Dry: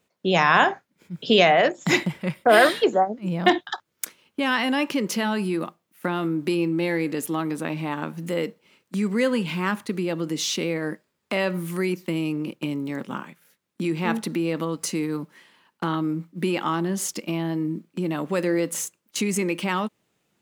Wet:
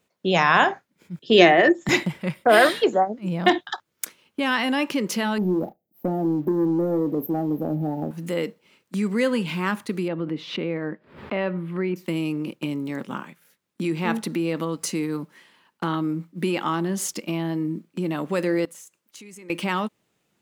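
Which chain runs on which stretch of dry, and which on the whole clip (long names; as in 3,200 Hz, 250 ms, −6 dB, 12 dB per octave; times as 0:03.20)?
0:01.19–0:01.89: hollow resonant body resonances 340/1,800 Hz, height 17 dB, ringing for 100 ms + multiband upward and downward expander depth 70%
0:05.38–0:08.11: linear-phase brick-wall band-stop 870–12,000 Hz + leveller curve on the samples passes 1 + double-tracking delay 33 ms −13.5 dB
0:10.08–0:11.96: high-frequency loss of the air 440 metres + background raised ahead of every attack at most 120 dB per second
0:18.65–0:19.50: low-shelf EQ 330 Hz −6 dB + downward compressor 4 to 1, threshold −44 dBFS
whole clip: no processing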